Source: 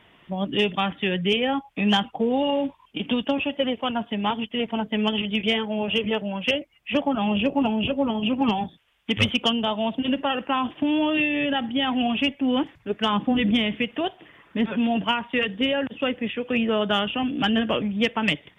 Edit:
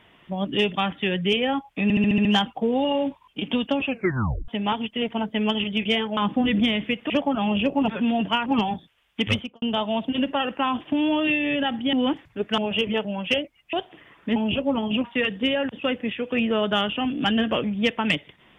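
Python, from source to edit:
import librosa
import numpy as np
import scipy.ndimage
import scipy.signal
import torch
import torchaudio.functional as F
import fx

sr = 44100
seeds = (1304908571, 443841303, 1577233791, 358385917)

y = fx.studio_fade_out(x, sr, start_s=9.14, length_s=0.38)
y = fx.edit(y, sr, fx.stutter(start_s=1.83, slice_s=0.07, count=7),
    fx.tape_stop(start_s=3.44, length_s=0.62),
    fx.swap(start_s=5.75, length_s=1.15, other_s=13.08, other_length_s=0.93),
    fx.swap(start_s=7.68, length_s=0.68, other_s=14.64, other_length_s=0.58),
    fx.cut(start_s=11.83, length_s=0.6), tone=tone)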